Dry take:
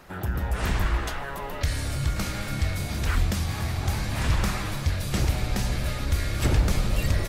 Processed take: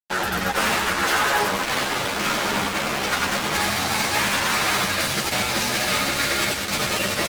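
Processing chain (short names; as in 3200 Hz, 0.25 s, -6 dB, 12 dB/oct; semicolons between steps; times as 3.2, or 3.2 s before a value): 1.39–3.54 level-crossing sampler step -26 dBFS; HPF 52 Hz 12 dB/oct; bell 190 Hz +4 dB 0.77 oct; negative-ratio compressor -26 dBFS, ratio -0.5; reverse bouncing-ball echo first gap 90 ms, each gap 1.2×, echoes 5; limiter -20.5 dBFS, peak gain reduction 8 dB; weighting filter A; fuzz box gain 37 dB, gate -39 dBFS; ensemble effect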